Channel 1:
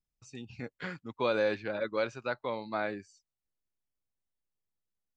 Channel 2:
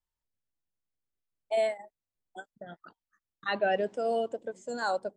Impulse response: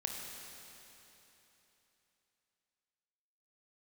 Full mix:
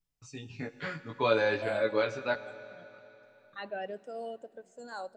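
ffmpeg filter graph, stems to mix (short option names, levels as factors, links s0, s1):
-filter_complex "[0:a]flanger=delay=17.5:depth=2.2:speed=0.65,aecho=1:1:7:0.43,volume=1.41,asplit=3[s0][s1][s2];[s0]atrim=end=2.36,asetpts=PTS-STARTPTS,afade=t=out:st=2.356:d=0.004:c=hsin[s3];[s1]atrim=start=2.36:end=3.23,asetpts=PTS-STARTPTS,volume=0[s4];[s2]atrim=start=3.23,asetpts=PTS-STARTPTS,afade=t=in:d=0.004:c=hsin[s5];[s3][s4][s5]concat=n=3:v=0:a=1,asplit=2[s6][s7];[s7]volume=0.335[s8];[1:a]adelay=100,volume=0.266,asplit=2[s9][s10];[s10]volume=0.119[s11];[2:a]atrim=start_sample=2205[s12];[s8][s11]amix=inputs=2:normalize=0[s13];[s13][s12]afir=irnorm=-1:irlink=0[s14];[s6][s9][s14]amix=inputs=3:normalize=0"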